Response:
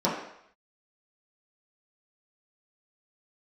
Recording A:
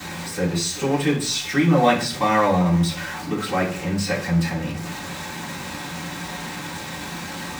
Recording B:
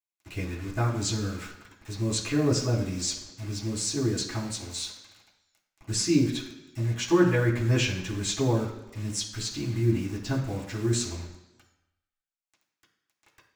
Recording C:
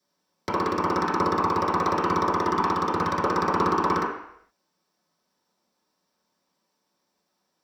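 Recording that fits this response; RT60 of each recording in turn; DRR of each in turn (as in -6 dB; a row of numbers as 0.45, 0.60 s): C; 0.45, 1.1, 0.70 s; -13.0, -5.5, -8.5 dB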